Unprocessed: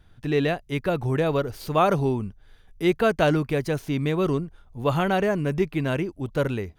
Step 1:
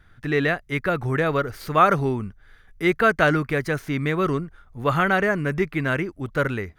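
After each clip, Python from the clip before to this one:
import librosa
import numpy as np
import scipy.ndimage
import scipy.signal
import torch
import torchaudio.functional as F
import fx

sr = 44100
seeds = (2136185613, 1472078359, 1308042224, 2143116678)

y = fx.band_shelf(x, sr, hz=1600.0, db=9.0, octaves=1.1)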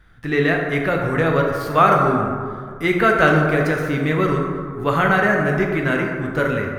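y = fx.rev_plate(x, sr, seeds[0], rt60_s=2.1, hf_ratio=0.4, predelay_ms=0, drr_db=0.0)
y = y * librosa.db_to_amplitude(1.0)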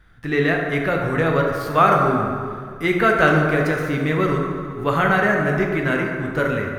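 y = fx.echo_thinned(x, sr, ms=70, feedback_pct=82, hz=420.0, wet_db=-16.5)
y = y * librosa.db_to_amplitude(-1.0)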